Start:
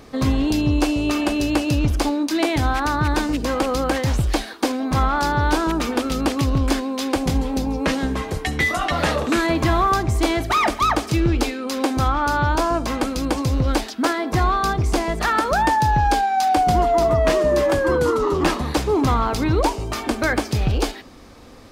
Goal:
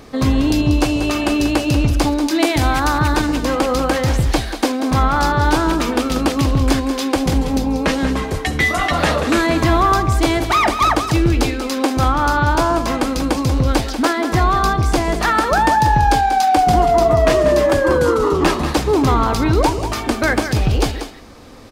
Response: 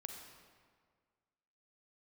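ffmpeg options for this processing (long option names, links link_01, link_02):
-filter_complex "[0:a]asettb=1/sr,asplit=3[link_01][link_02][link_03];[link_01]atrim=end=2.404[link_04];[link_02]atrim=start=2.4:end=3.16,asetpts=PTS-STARTPTS,afade=type=in:duration=0.004:curve=qsin,afade=type=out:start_time=0.756:duration=0.004:curve=qsin,highshelf=frequency=5800:gain=6[link_05];[link_03]atrim=start=3.156[link_06];[link_04][link_05]acrossfade=duration=0.004:curve1=hsin:curve2=qsin[link_07];[link_07][link_06]acrossfade=duration=0.004:curve1=qsin:curve2=hsin,aecho=1:1:188:0.335,volume=3.5dB"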